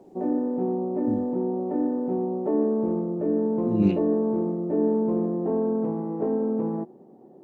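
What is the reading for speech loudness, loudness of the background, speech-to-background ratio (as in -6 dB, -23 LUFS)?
-27.5 LUFS, -26.0 LUFS, -1.5 dB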